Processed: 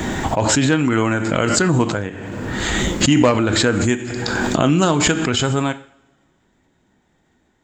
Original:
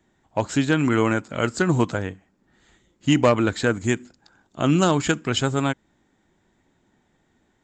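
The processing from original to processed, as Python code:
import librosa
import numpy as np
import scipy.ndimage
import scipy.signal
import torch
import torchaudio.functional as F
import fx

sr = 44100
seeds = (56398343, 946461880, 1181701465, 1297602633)

y = fx.rev_double_slope(x, sr, seeds[0], early_s=0.5, late_s=1.9, knee_db=-24, drr_db=9.5)
y = fx.pre_swell(y, sr, db_per_s=21.0)
y = y * 10.0 ** (2.0 / 20.0)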